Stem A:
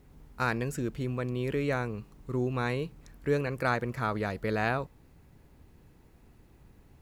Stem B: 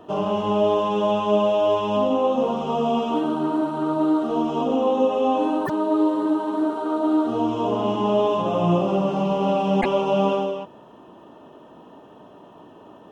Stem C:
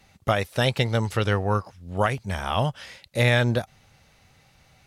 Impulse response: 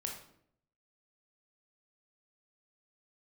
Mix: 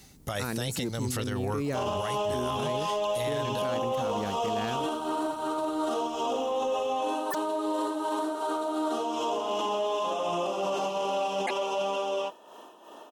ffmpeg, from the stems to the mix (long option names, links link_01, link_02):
-filter_complex "[0:a]equalizer=frequency=240:width_type=o:width=2.2:gain=10.5,acontrast=38,volume=-13.5dB[link_01];[1:a]highpass=490,acontrast=80,adelay=1650,volume=-4.5dB[link_02];[2:a]bandreject=frequency=2400:width=12,acompressor=threshold=-23dB:ratio=6,volume=-0.5dB[link_03];[link_02][link_03]amix=inputs=2:normalize=0,tremolo=f=2.7:d=0.6,alimiter=limit=-17dB:level=0:latency=1,volume=0dB[link_04];[link_01][link_04]amix=inputs=2:normalize=0,bass=frequency=250:gain=0,treble=frequency=4000:gain=14,alimiter=limit=-22dB:level=0:latency=1:release=12"